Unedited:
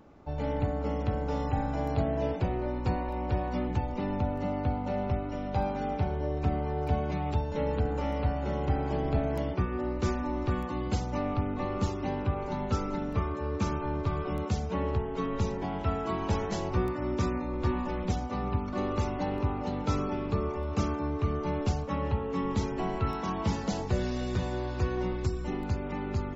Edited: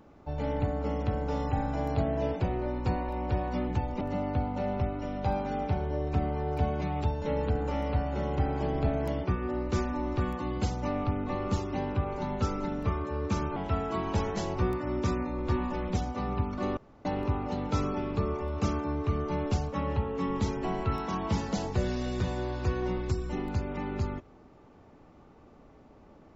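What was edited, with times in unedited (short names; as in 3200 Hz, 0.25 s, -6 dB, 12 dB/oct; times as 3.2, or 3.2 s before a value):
4.01–4.31 cut
13.86–15.71 cut
18.92–19.2 room tone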